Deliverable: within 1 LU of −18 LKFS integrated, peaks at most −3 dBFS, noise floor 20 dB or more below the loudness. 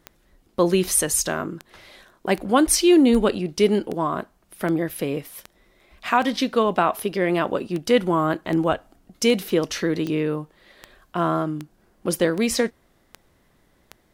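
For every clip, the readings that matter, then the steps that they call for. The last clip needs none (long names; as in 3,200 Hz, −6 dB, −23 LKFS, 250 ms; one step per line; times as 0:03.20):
number of clicks 19; integrated loudness −22.0 LKFS; sample peak −6.0 dBFS; target loudness −18.0 LKFS
→ click removal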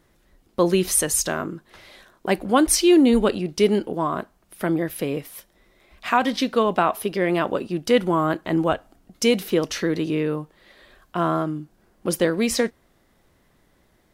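number of clicks 0; integrated loudness −22.0 LKFS; sample peak −6.0 dBFS; target loudness −18.0 LKFS
→ level +4 dB
brickwall limiter −3 dBFS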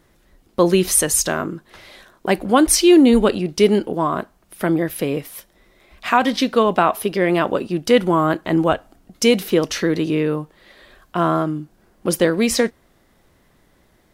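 integrated loudness −18.0 LKFS; sample peak −3.0 dBFS; background noise floor −58 dBFS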